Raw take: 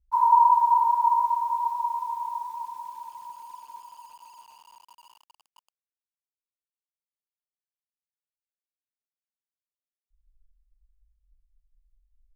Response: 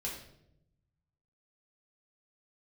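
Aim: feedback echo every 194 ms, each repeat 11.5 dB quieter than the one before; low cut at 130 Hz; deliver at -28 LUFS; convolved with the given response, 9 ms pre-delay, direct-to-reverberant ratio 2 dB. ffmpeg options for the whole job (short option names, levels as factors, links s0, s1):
-filter_complex "[0:a]highpass=130,aecho=1:1:194|388|582:0.266|0.0718|0.0194,asplit=2[s0][s1];[1:a]atrim=start_sample=2205,adelay=9[s2];[s1][s2]afir=irnorm=-1:irlink=0,volume=0.708[s3];[s0][s3]amix=inputs=2:normalize=0,volume=0.376"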